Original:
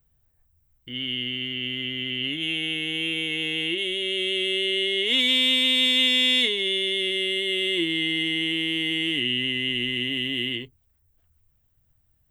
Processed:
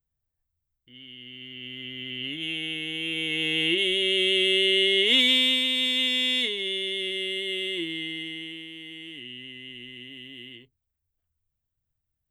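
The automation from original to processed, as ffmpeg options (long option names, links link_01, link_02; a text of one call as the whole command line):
ffmpeg -i in.wav -af "volume=3dB,afade=type=in:start_time=1.17:duration=1.28:silence=0.251189,afade=type=in:start_time=3.02:duration=0.71:silence=0.446684,afade=type=out:start_time=5:duration=0.68:silence=0.421697,afade=type=out:start_time=7.52:duration=1.18:silence=0.281838" out.wav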